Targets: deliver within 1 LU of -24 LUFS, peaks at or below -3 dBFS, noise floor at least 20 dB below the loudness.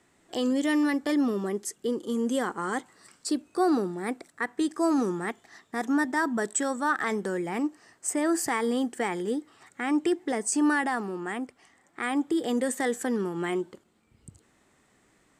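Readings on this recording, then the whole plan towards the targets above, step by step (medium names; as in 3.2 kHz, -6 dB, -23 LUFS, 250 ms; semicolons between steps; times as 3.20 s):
loudness -28.5 LUFS; peak level -14.0 dBFS; loudness target -24.0 LUFS
-> trim +4.5 dB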